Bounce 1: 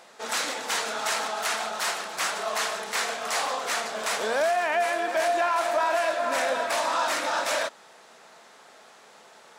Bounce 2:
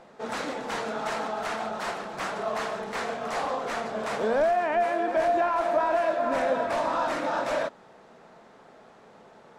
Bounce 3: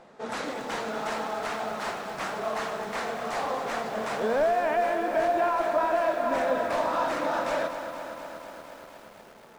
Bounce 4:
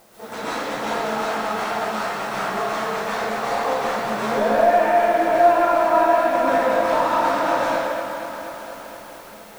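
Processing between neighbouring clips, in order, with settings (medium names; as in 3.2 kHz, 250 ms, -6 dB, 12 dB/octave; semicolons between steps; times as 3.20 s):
tilt EQ -4.5 dB/octave; trim -1.5 dB
bit-crushed delay 237 ms, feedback 80%, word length 8-bit, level -10 dB; trim -1 dB
flange 0.63 Hz, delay 8.5 ms, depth 6.4 ms, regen -54%; in parallel at -9 dB: word length cut 8-bit, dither triangular; on the sum: reverberation RT60 1.4 s, pre-delay 115 ms, DRR -8.5 dB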